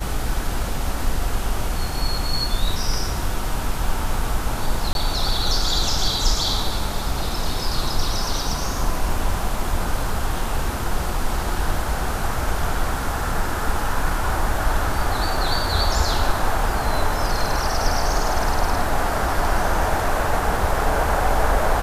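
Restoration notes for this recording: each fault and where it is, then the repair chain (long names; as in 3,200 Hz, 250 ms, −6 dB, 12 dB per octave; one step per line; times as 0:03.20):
0:04.93–0:04.95: drop-out 21 ms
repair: repair the gap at 0:04.93, 21 ms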